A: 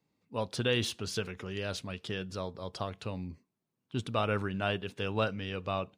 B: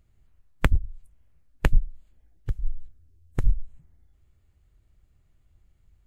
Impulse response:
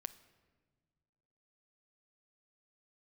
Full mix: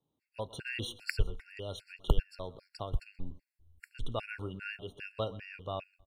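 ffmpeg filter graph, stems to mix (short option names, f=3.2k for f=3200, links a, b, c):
-filter_complex "[0:a]volume=-3.5dB,asplit=3[a][b][c];[b]volume=-17.5dB[d];[c]volume=-19dB[e];[1:a]adelay=450,volume=-4.5dB[f];[2:a]atrim=start_sample=2205[g];[d][g]afir=irnorm=-1:irlink=0[h];[e]aecho=0:1:128|256|384:1|0.17|0.0289[i];[a][f][h][i]amix=inputs=4:normalize=0,equalizer=f=200:t=o:w=0.33:g=-8,equalizer=f=1.25k:t=o:w=0.33:g=-6,equalizer=f=6.3k:t=o:w=0.33:g=-10,afftfilt=real='re*gt(sin(2*PI*2.5*pts/sr)*(1-2*mod(floor(b*sr/1024/1400),2)),0)':imag='im*gt(sin(2*PI*2.5*pts/sr)*(1-2*mod(floor(b*sr/1024/1400),2)),0)':win_size=1024:overlap=0.75"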